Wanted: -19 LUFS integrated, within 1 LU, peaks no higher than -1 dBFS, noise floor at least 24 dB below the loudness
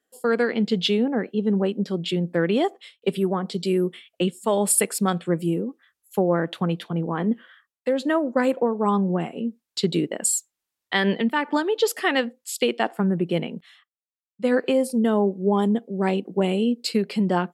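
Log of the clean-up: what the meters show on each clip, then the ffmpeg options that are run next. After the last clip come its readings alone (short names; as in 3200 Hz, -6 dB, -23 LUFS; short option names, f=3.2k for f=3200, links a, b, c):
loudness -23.5 LUFS; peak -6.0 dBFS; loudness target -19.0 LUFS
-> -af "volume=4.5dB"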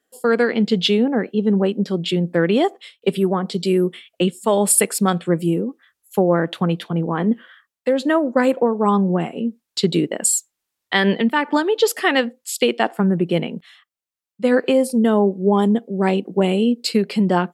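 loudness -19.0 LUFS; peak -1.5 dBFS; noise floor -82 dBFS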